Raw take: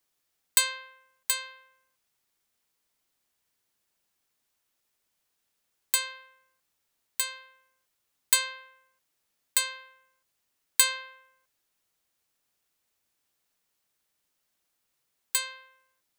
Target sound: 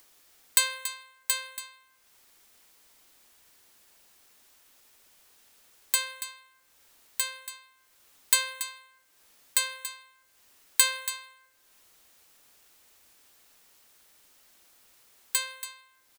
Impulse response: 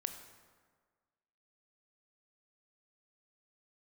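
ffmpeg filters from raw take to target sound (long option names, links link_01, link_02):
-filter_complex "[0:a]equalizer=frequency=140:width_type=o:width=0.88:gain=-7,bandreject=frequency=332.1:width_type=h:width=4,bandreject=frequency=664.2:width_type=h:width=4,bandreject=frequency=996.3:width_type=h:width=4,bandreject=frequency=1328.4:width_type=h:width=4,bandreject=frequency=1660.5:width_type=h:width=4,bandreject=frequency=1992.6:width_type=h:width=4,bandreject=frequency=2324.7:width_type=h:width=4,bandreject=frequency=2656.8:width_type=h:width=4,bandreject=frequency=2988.9:width_type=h:width=4,bandreject=frequency=3321:width_type=h:width=4,bandreject=frequency=3653.1:width_type=h:width=4,bandreject=frequency=3985.2:width_type=h:width=4,bandreject=frequency=4317.3:width_type=h:width=4,bandreject=frequency=4649.4:width_type=h:width=4,bandreject=frequency=4981.5:width_type=h:width=4,bandreject=frequency=5313.6:width_type=h:width=4,bandreject=frequency=5645.7:width_type=h:width=4,bandreject=frequency=5977.8:width_type=h:width=4,bandreject=frequency=6309.9:width_type=h:width=4,bandreject=frequency=6642:width_type=h:width=4,bandreject=frequency=6974.1:width_type=h:width=4,bandreject=frequency=7306.2:width_type=h:width=4,bandreject=frequency=7638.3:width_type=h:width=4,bandreject=frequency=7970.4:width_type=h:width=4,bandreject=frequency=8302.5:width_type=h:width=4,bandreject=frequency=8634.6:width_type=h:width=4,bandreject=frequency=8966.7:width_type=h:width=4,bandreject=frequency=9298.8:width_type=h:width=4,bandreject=frequency=9630.9:width_type=h:width=4,bandreject=frequency=9963:width_type=h:width=4,bandreject=frequency=10295.1:width_type=h:width=4,bandreject=frequency=10627.2:width_type=h:width=4,bandreject=frequency=10959.3:width_type=h:width=4,bandreject=frequency=11291.4:width_type=h:width=4,acompressor=mode=upward:threshold=-45dB:ratio=2.5,aecho=1:1:282:0.251,asplit=2[link_01][link_02];[1:a]atrim=start_sample=2205[link_03];[link_02][link_03]afir=irnorm=-1:irlink=0,volume=-12.5dB[link_04];[link_01][link_04]amix=inputs=2:normalize=0,volume=-1.5dB"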